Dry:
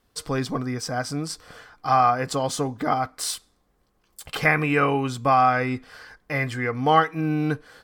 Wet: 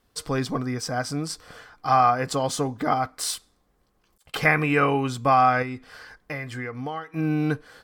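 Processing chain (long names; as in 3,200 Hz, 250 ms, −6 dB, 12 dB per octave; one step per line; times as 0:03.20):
0:03.24–0:04.34: volume swells 365 ms
0:05.62–0:07.14: downward compressor 12 to 1, threshold −29 dBFS, peak gain reduction 17.5 dB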